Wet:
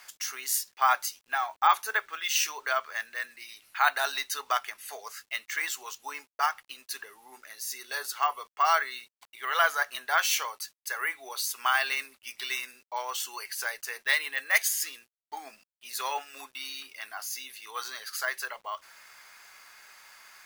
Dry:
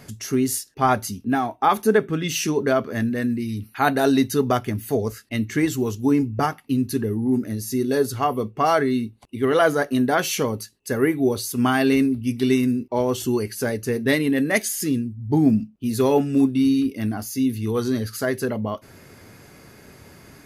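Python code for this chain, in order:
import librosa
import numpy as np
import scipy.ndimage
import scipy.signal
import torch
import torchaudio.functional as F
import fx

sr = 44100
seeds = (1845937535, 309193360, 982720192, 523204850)

y = scipy.signal.sosfilt(scipy.signal.butter(4, 950.0, 'highpass', fs=sr, output='sos'), x)
y = fx.quant_dither(y, sr, seeds[0], bits=10, dither='none')
y = np.repeat(scipy.signal.resample_poly(y, 1, 2), 2)[:len(y)]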